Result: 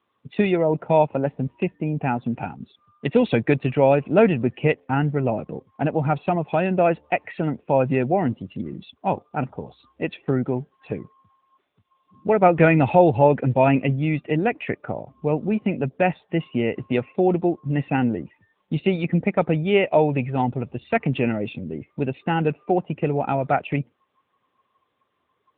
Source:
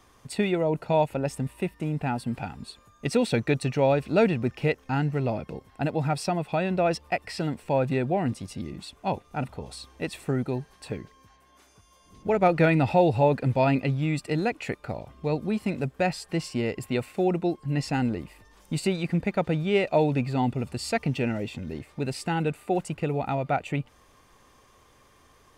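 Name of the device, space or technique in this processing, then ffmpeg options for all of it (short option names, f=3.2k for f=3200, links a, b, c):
mobile call with aggressive noise cancelling: -filter_complex "[0:a]asplit=3[a][b][c];[a]afade=t=out:st=19.88:d=0.02[d];[b]adynamicequalizer=threshold=0.0141:dfrequency=250:dqfactor=1.3:tfrequency=250:tqfactor=1.3:attack=5:release=100:ratio=0.375:range=2:mode=cutabove:tftype=bell,afade=t=in:st=19.88:d=0.02,afade=t=out:st=20.89:d=0.02[e];[c]afade=t=in:st=20.89:d=0.02[f];[d][e][f]amix=inputs=3:normalize=0,highpass=f=120:p=1,afftdn=nr=18:nf=-44,volume=6dB" -ar 8000 -c:a libopencore_amrnb -b:a 10200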